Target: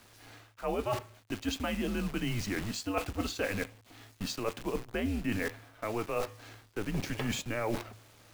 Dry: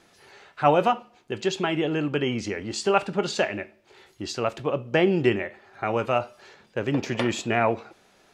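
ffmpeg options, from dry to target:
-af "acrusher=bits=7:dc=4:mix=0:aa=0.000001,afreqshift=-110,areverse,acompressor=threshold=-33dB:ratio=6,areverse,volume=2.5dB"

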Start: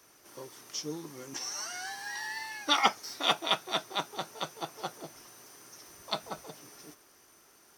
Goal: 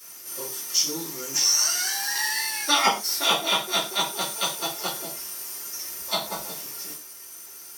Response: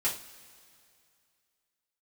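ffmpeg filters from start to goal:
-filter_complex "[0:a]acrossover=split=1100[a][b];[b]alimiter=limit=-22.5dB:level=0:latency=1:release=287[c];[a][c]amix=inputs=2:normalize=0,crystalizer=i=4:c=0[d];[1:a]atrim=start_sample=2205,atrim=end_sample=6174[e];[d][e]afir=irnorm=-1:irlink=0"

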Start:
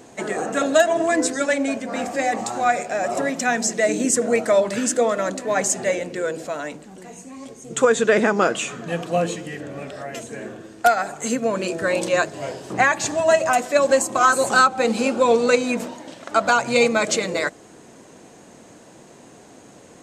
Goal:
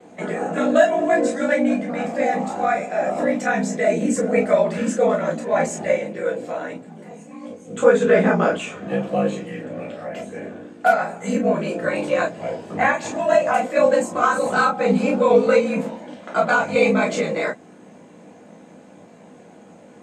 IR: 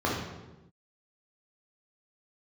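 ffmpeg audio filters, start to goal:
-filter_complex "[0:a]aeval=exprs='val(0)*sin(2*PI*28*n/s)':c=same[a];[1:a]atrim=start_sample=2205,afade=t=out:st=0.17:d=0.01,atrim=end_sample=7938,asetrate=88200,aresample=44100[b];[a][b]afir=irnorm=-1:irlink=0,volume=-7dB"

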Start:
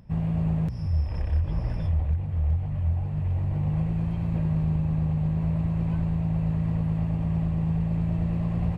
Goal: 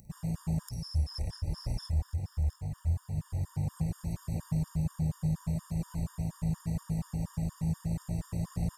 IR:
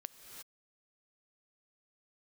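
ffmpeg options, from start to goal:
-filter_complex "[0:a]aexciter=amount=15.1:drive=5.2:freq=4.7k,asplit=2[a][b];[1:a]atrim=start_sample=2205,asetrate=24255,aresample=44100,adelay=51[c];[b][c]afir=irnorm=-1:irlink=0,volume=-10dB[d];[a][d]amix=inputs=2:normalize=0,afftfilt=real='re*gt(sin(2*PI*4.2*pts/sr)*(1-2*mod(floor(b*sr/1024/940),2)),0)':imag='im*gt(sin(2*PI*4.2*pts/sr)*(1-2*mod(floor(b*sr/1024/940),2)),0)':win_size=1024:overlap=0.75,volume=-5dB"

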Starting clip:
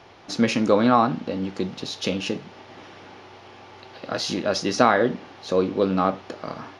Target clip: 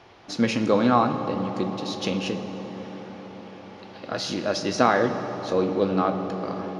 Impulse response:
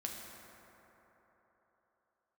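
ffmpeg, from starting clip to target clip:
-filter_complex "[0:a]asplit=2[a][b];[1:a]atrim=start_sample=2205,asetrate=24255,aresample=44100,highshelf=f=8k:g=-7[c];[b][c]afir=irnorm=-1:irlink=0,volume=-4.5dB[d];[a][d]amix=inputs=2:normalize=0,volume=-6dB"

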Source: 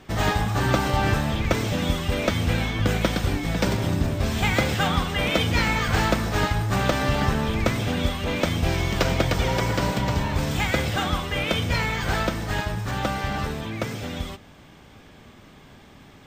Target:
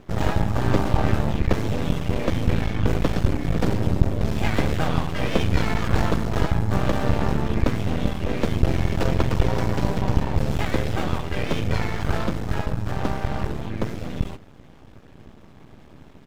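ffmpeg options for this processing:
-filter_complex "[0:a]asplit=2[a][b];[b]asetrate=35002,aresample=44100,atempo=1.25992,volume=-4dB[c];[a][c]amix=inputs=2:normalize=0,aeval=exprs='max(val(0),0)':c=same,tiltshelf=f=940:g=5.5"

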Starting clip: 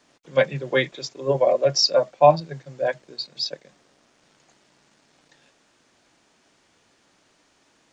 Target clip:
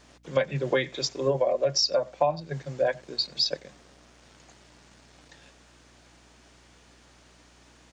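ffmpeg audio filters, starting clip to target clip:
-filter_complex "[0:a]asplit=2[a][b];[b]adelay=93.29,volume=-29dB,highshelf=f=4k:g=-2.1[c];[a][c]amix=inputs=2:normalize=0,acompressor=threshold=-25dB:ratio=12,aeval=exprs='val(0)+0.000631*(sin(2*PI*60*n/s)+sin(2*PI*2*60*n/s)/2+sin(2*PI*3*60*n/s)/3+sin(2*PI*4*60*n/s)/4+sin(2*PI*5*60*n/s)/5)':c=same,volume=4.5dB"

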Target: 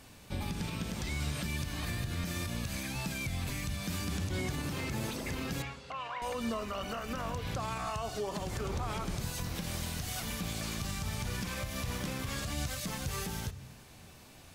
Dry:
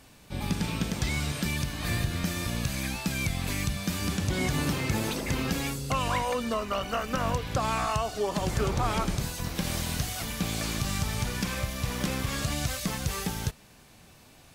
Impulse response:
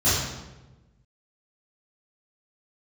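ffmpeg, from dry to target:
-filter_complex "[0:a]alimiter=level_in=3dB:limit=-24dB:level=0:latency=1:release=166,volume=-3dB,asettb=1/sr,asplit=3[a][b][c];[a]atrim=end=5.624[d];[b]atrim=start=5.62:end=6.22,asetpts=PTS-STARTPTS,afade=t=in:d=0.004:c=qsin,afade=t=out:st=0.596:d=0.004:c=qsin,highpass=670,lowpass=2.8k[e];[c]atrim=start=6.216[f];[d][e]acrossfade=d=0.004:c1=hsin:c2=qsin[g];[g][f]acrossfade=d=0.004:c1=qsin:c2=hsin,asplit=2[h][i];[1:a]atrim=start_sample=2205[j];[i][j]afir=irnorm=-1:irlink=0,volume=-32.5dB[k];[h][k]amix=inputs=2:normalize=0"

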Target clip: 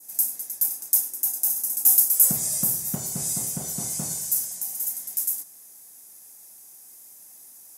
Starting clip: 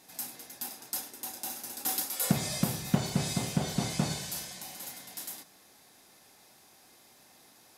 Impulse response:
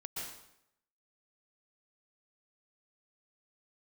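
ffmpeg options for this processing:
-af "adynamicequalizer=threshold=0.00251:dfrequency=2700:dqfactor=1.1:tfrequency=2700:tqfactor=1.1:attack=5:release=100:ratio=0.375:range=2.5:mode=cutabove:tftype=bell,aexciter=amount=11.4:drive=2.4:freq=5.9k,volume=-5.5dB"

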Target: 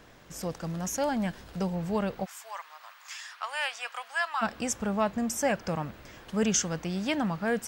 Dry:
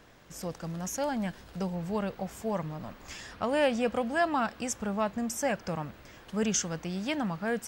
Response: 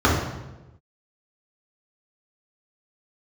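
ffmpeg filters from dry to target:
-filter_complex "[0:a]asplit=3[a][b][c];[a]afade=t=out:st=2.24:d=0.02[d];[b]highpass=f=1k:w=0.5412,highpass=f=1k:w=1.3066,afade=t=in:st=2.24:d=0.02,afade=t=out:st=4.41:d=0.02[e];[c]afade=t=in:st=4.41:d=0.02[f];[d][e][f]amix=inputs=3:normalize=0,volume=2.5dB"

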